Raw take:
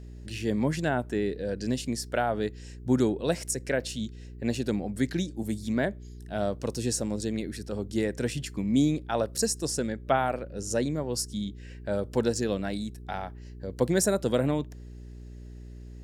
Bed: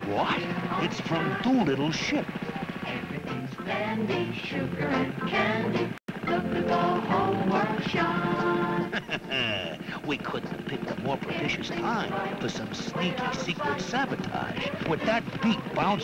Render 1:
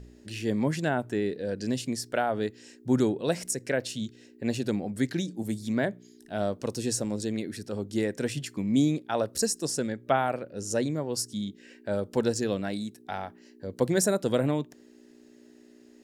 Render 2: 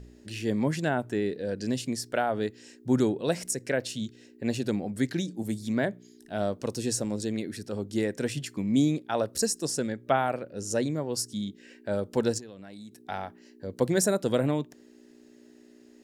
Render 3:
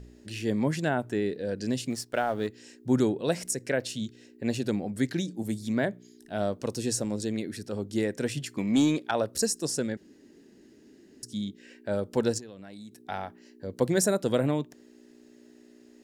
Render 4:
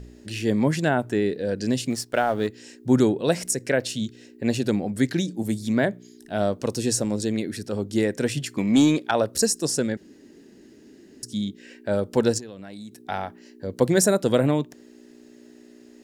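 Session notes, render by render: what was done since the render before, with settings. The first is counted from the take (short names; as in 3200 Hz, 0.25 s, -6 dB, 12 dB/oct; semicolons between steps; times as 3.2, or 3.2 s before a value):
de-hum 60 Hz, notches 3
12.38–13 compressor 12:1, threshold -40 dBFS
1.9–2.48 G.711 law mismatch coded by A; 8.58–9.11 overdrive pedal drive 15 dB, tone 5200 Hz, clips at -13 dBFS; 9.97–11.23 room tone
gain +5.5 dB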